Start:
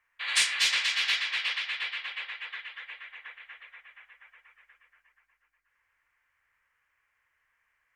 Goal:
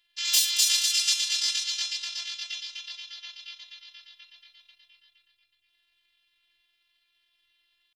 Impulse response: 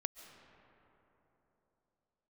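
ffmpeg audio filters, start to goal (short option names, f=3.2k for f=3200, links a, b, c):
-af "asetrate=76340,aresample=44100,atempo=0.577676,afftfilt=real='hypot(re,im)*cos(PI*b)':imag='0':win_size=512:overlap=0.75,acontrast=50,volume=1.5dB"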